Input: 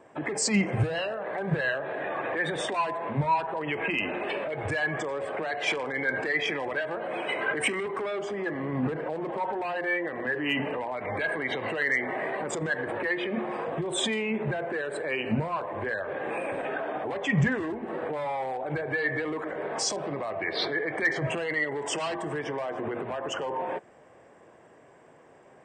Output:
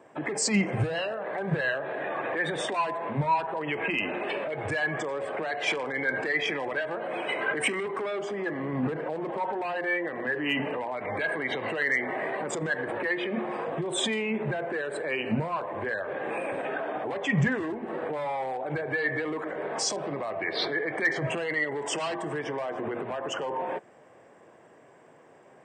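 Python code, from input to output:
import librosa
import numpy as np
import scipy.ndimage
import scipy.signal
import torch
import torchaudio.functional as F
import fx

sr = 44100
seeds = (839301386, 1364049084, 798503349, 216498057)

y = scipy.signal.sosfilt(scipy.signal.butter(2, 100.0, 'highpass', fs=sr, output='sos'), x)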